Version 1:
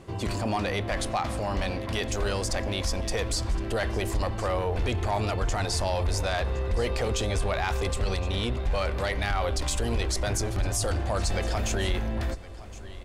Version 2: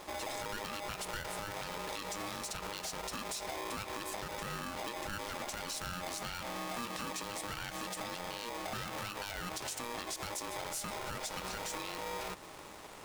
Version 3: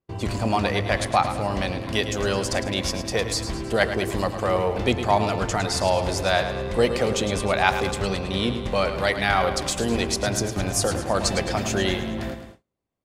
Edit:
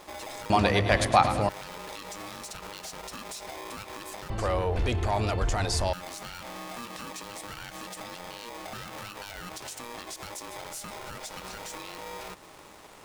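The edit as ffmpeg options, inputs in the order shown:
-filter_complex "[1:a]asplit=3[s0][s1][s2];[s0]atrim=end=0.502[s3];[2:a]atrim=start=0.498:end=1.492[s4];[s1]atrim=start=1.488:end=4.302[s5];[0:a]atrim=start=4.298:end=5.932[s6];[s2]atrim=start=5.928[s7];[s3][s4]acrossfade=d=0.004:c1=hsin:c2=hsin[s8];[s8][s5]acrossfade=d=0.004:c1=hsin:c2=hsin[s9];[s9][s6]acrossfade=d=0.004:c1=hsin:c2=hsin[s10];[s10][s7]acrossfade=d=0.004:c1=hsin:c2=hsin"

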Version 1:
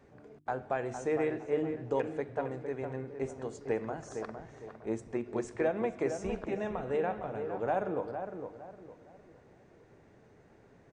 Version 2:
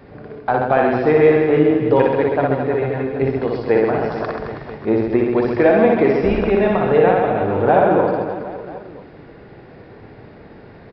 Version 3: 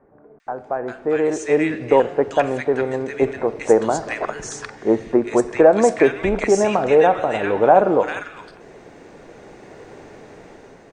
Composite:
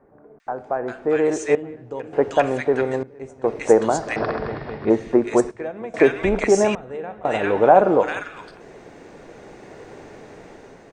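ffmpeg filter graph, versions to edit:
-filter_complex "[0:a]asplit=4[s0][s1][s2][s3];[2:a]asplit=6[s4][s5][s6][s7][s8][s9];[s4]atrim=end=1.552[s10];[s0]atrim=start=1.548:end=2.132[s11];[s5]atrim=start=2.128:end=3.032[s12];[s1]atrim=start=3.028:end=3.442[s13];[s6]atrim=start=3.438:end=4.162[s14];[1:a]atrim=start=4.158:end=4.902[s15];[s7]atrim=start=4.898:end=5.512[s16];[s2]atrim=start=5.508:end=5.942[s17];[s8]atrim=start=5.938:end=6.752[s18];[s3]atrim=start=6.748:end=7.252[s19];[s9]atrim=start=7.248[s20];[s10][s11]acrossfade=d=0.004:c1=hsin:c2=hsin[s21];[s21][s12]acrossfade=d=0.004:c1=hsin:c2=hsin[s22];[s22][s13]acrossfade=d=0.004:c1=hsin:c2=hsin[s23];[s23][s14]acrossfade=d=0.004:c1=hsin:c2=hsin[s24];[s24][s15]acrossfade=d=0.004:c1=hsin:c2=hsin[s25];[s25][s16]acrossfade=d=0.004:c1=hsin:c2=hsin[s26];[s26][s17]acrossfade=d=0.004:c1=hsin:c2=hsin[s27];[s27][s18]acrossfade=d=0.004:c1=hsin:c2=hsin[s28];[s28][s19]acrossfade=d=0.004:c1=hsin:c2=hsin[s29];[s29][s20]acrossfade=d=0.004:c1=hsin:c2=hsin"

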